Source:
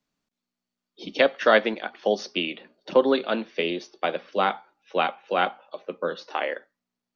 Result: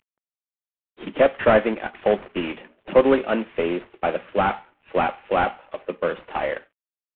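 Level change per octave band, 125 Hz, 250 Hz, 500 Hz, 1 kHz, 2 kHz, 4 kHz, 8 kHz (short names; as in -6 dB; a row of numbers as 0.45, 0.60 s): +8.5 dB, +4.0 dB, +3.5 dB, +2.5 dB, -0.5 dB, -6.5 dB, n/a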